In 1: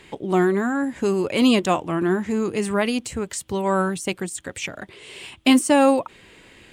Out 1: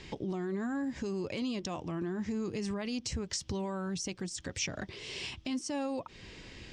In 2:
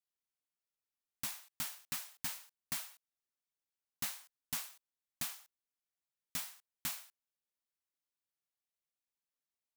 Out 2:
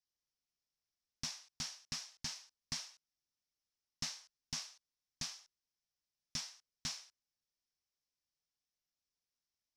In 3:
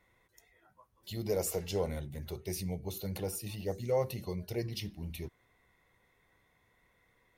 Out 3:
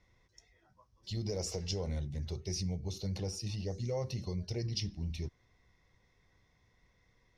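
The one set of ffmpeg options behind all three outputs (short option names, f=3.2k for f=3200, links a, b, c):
-af "lowshelf=f=200:g=12,bandreject=f=1.4k:w=20,acompressor=threshold=-27dB:ratio=3,alimiter=limit=-23dB:level=0:latency=1:release=77,lowpass=f=5.5k:t=q:w=4.7,volume=-4.5dB"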